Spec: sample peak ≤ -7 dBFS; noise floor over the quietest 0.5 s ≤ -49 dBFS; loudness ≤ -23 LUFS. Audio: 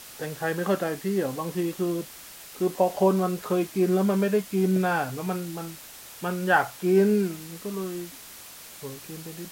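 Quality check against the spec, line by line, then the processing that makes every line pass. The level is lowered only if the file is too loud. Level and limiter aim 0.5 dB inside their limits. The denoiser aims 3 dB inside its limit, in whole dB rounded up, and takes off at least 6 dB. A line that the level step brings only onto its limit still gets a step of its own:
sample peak -7.5 dBFS: pass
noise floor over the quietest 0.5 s -45 dBFS: fail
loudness -26.0 LUFS: pass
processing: noise reduction 7 dB, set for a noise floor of -45 dBFS

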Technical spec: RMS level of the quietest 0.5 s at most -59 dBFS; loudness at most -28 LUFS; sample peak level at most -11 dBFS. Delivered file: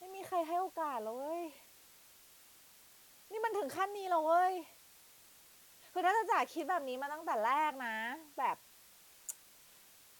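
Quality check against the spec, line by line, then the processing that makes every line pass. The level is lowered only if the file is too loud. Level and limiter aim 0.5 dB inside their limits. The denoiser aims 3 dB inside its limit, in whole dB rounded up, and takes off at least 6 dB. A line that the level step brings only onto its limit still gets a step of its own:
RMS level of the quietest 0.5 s -61 dBFS: pass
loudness -36.0 LUFS: pass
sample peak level -20.0 dBFS: pass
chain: none needed

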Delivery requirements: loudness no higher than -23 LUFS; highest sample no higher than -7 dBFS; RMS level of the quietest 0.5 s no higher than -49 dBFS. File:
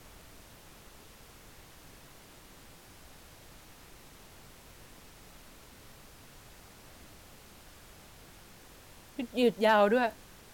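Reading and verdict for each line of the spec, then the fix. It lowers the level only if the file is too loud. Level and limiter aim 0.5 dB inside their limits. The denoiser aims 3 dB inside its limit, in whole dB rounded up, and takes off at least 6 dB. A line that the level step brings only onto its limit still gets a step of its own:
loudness -28.0 LUFS: pass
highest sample -13.5 dBFS: pass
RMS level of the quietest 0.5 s -54 dBFS: pass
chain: none needed

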